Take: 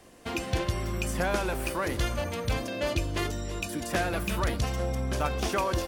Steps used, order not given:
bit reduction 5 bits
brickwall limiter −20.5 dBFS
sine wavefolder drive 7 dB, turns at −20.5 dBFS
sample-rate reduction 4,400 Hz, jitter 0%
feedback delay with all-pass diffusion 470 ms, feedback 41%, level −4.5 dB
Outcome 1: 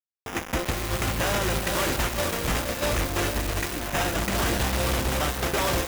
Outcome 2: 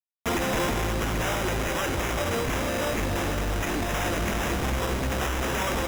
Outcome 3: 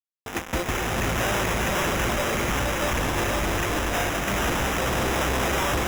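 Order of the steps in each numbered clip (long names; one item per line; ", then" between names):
sample-rate reduction, then feedback delay with all-pass diffusion, then bit reduction, then brickwall limiter, then sine wavefolder
sine wavefolder, then bit reduction, then feedback delay with all-pass diffusion, then sample-rate reduction, then brickwall limiter
bit reduction, then brickwall limiter, then feedback delay with all-pass diffusion, then sine wavefolder, then sample-rate reduction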